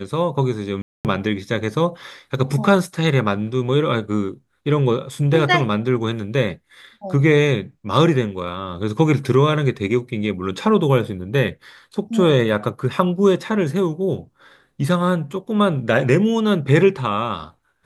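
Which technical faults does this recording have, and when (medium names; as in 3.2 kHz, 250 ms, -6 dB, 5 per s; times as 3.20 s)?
0.82–1.05 s: dropout 228 ms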